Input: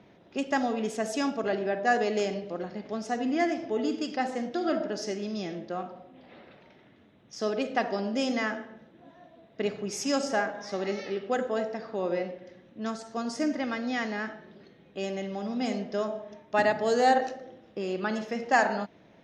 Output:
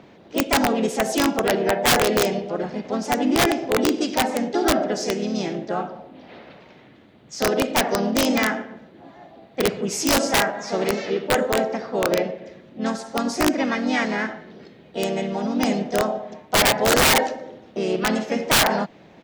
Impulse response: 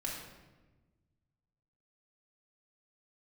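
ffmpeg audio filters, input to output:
-filter_complex "[0:a]acontrast=83,asplit=3[link_01][link_02][link_03];[link_02]asetrate=37084,aresample=44100,atempo=1.18921,volume=-11dB[link_04];[link_03]asetrate=52444,aresample=44100,atempo=0.840896,volume=-5dB[link_05];[link_01][link_04][link_05]amix=inputs=3:normalize=0,aeval=exprs='(mod(3.35*val(0)+1,2)-1)/3.35':channel_layout=same"

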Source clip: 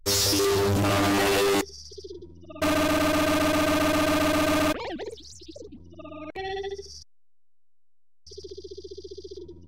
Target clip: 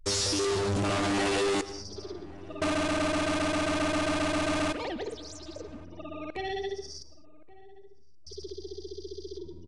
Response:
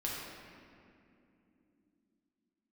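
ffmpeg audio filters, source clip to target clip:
-filter_complex "[0:a]acompressor=threshold=-31dB:ratio=2,asplit=2[link_01][link_02];[link_02]adelay=1125,lowpass=frequency=920:poles=1,volume=-18.5dB,asplit=2[link_03][link_04];[link_04]adelay=1125,lowpass=frequency=920:poles=1,volume=0.22[link_05];[link_01][link_03][link_05]amix=inputs=3:normalize=0,asplit=2[link_06][link_07];[1:a]atrim=start_sample=2205,afade=type=out:start_time=0.17:duration=0.01,atrim=end_sample=7938,adelay=105[link_08];[link_07][link_08]afir=irnorm=-1:irlink=0,volume=-16.5dB[link_09];[link_06][link_09]amix=inputs=2:normalize=0,aresample=22050,aresample=44100"

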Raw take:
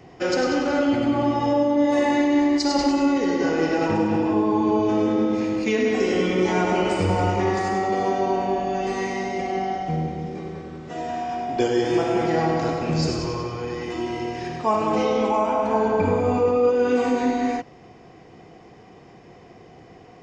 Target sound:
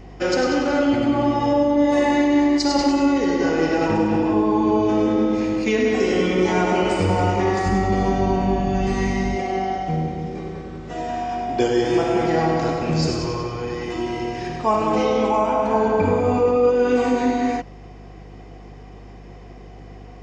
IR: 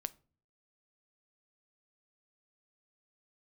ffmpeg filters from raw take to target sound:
-filter_complex "[0:a]aeval=exprs='val(0)+0.00794*(sin(2*PI*50*n/s)+sin(2*PI*2*50*n/s)/2+sin(2*PI*3*50*n/s)/3+sin(2*PI*4*50*n/s)/4+sin(2*PI*5*50*n/s)/5)':channel_layout=same,asplit=3[link_01][link_02][link_03];[link_01]afade=type=out:start_time=7.65:duration=0.02[link_04];[link_02]asubboost=boost=5:cutoff=200,afade=type=in:start_time=7.65:duration=0.02,afade=type=out:start_time=9.35:duration=0.02[link_05];[link_03]afade=type=in:start_time=9.35:duration=0.02[link_06];[link_04][link_05][link_06]amix=inputs=3:normalize=0,volume=2dB"

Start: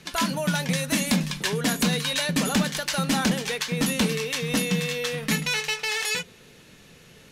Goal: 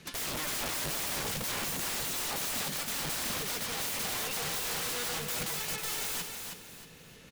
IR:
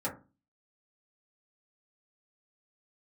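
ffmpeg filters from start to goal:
-filter_complex "[0:a]asettb=1/sr,asplit=3[link_01][link_02][link_03];[link_01]atrim=end=0.534[link_04];[link_02]atrim=start=0.53:end=2.42,asetpts=PTS-STARTPTS,afade=type=in:duration=0.004:curve=qsin,afade=type=out:start_time=1.886:duration=0.004:curve=qsin,lowshelf=frequency=500:gain=5.5[link_05];[link_03]atrim=start=2.416[link_06];[link_04][link_05]acrossfade=duration=0.004:curve1=hsin:curve2=qsin[link_07];[link_07][link_06]acrossfade=duration=0.004:curve1=qsin:curve2=hsin,aeval=exprs='(mod(21.1*val(0)+1,2)-1)/21.1':channel_layout=same,aecho=1:1:316|632|948|1264:0.501|0.17|0.0579|0.0197,volume=-4dB"

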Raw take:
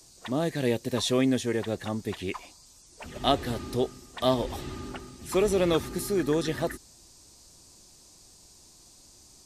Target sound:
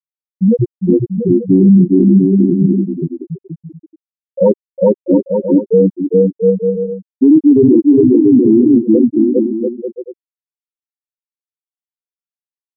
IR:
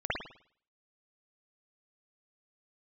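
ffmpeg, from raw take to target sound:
-af "lowpass=frequency=3200:width=0.5412,lowpass=frequency=3200:width=1.3066,aemphasis=mode=production:type=50fm,afftfilt=real='re*gte(hypot(re,im),0.355)':imag='im*gte(hypot(re,im),0.355)':win_size=1024:overlap=0.75,acontrast=31,aecho=1:1:300|510|657|759.9|831.9:0.631|0.398|0.251|0.158|0.1,asetrate=32667,aresample=44100,asuperstop=centerf=1300:order=4:qfactor=2.4,alimiter=level_in=18.5dB:limit=-1dB:release=50:level=0:latency=1,volume=-1dB"

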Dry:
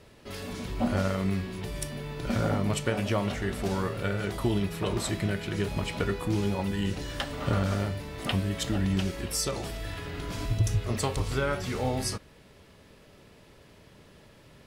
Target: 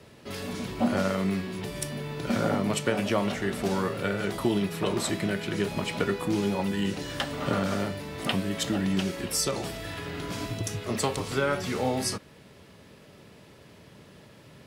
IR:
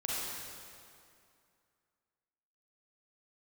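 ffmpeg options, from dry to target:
-filter_complex "[0:a]highpass=79,equalizer=frequency=170:width_type=o:width=1.3:gain=2.5,acrossover=split=170|1300[link_01][link_02][link_03];[link_01]acompressor=threshold=-43dB:ratio=5[link_04];[link_04][link_02][link_03]amix=inputs=3:normalize=0,volume=2.5dB"

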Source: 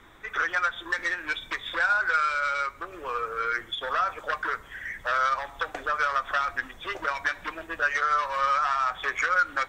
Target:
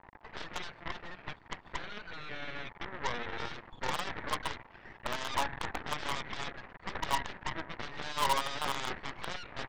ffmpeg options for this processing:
ffmpeg -i in.wav -filter_complex "[0:a]asplit=3[link_01][link_02][link_03];[link_01]afade=type=out:start_time=1.13:duration=0.02[link_04];[link_02]acompressor=threshold=-31dB:ratio=4,afade=type=in:start_time=1.13:duration=0.02,afade=type=out:start_time=3.38:duration=0.02[link_05];[link_03]afade=type=in:start_time=3.38:duration=0.02[link_06];[link_04][link_05][link_06]amix=inputs=3:normalize=0,asoftclip=type=tanh:threshold=-28dB,acrusher=bits=5:dc=4:mix=0:aa=0.000001,lowpass=frequency=920:width_type=q:width=4.9,aeval=exprs='0.0631*(cos(1*acos(clip(val(0)/0.0631,-1,1)))-cos(1*PI/2))+0.0282*(cos(4*acos(clip(val(0)/0.0631,-1,1)))-cos(4*PI/2))+0.0112*(cos(6*acos(clip(val(0)/0.0631,-1,1)))-cos(6*PI/2))+0.00251*(cos(7*acos(clip(val(0)/0.0631,-1,1)))-cos(7*PI/2))+0.0141*(cos(8*acos(clip(val(0)/0.0631,-1,1)))-cos(8*PI/2))':channel_layout=same" out.wav

